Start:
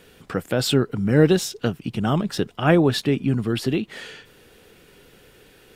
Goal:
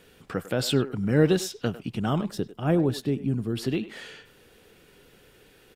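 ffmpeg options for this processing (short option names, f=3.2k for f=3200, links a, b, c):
-filter_complex "[0:a]asplit=3[a][b][c];[a]afade=t=out:st=2.29:d=0.02[d];[b]equalizer=f=2.1k:w=0.44:g=-10,afade=t=in:st=2.29:d=0.02,afade=t=out:st=3.57:d=0.02[e];[c]afade=t=in:st=3.57:d=0.02[f];[d][e][f]amix=inputs=3:normalize=0,asplit=2[g][h];[h]adelay=100,highpass=300,lowpass=3.4k,asoftclip=type=hard:threshold=-12.5dB,volume=-14dB[i];[g][i]amix=inputs=2:normalize=0,volume=-4.5dB"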